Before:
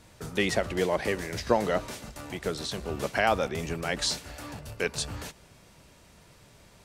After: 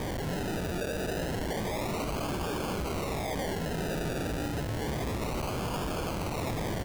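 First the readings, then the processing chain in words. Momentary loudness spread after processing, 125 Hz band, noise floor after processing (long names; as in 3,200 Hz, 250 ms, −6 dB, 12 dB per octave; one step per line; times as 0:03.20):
1 LU, +4.5 dB, −34 dBFS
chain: sign of each sample alone
single-tap delay 268 ms −5 dB
sample-and-hold swept by an LFO 32×, swing 60% 0.3 Hz
level −2 dB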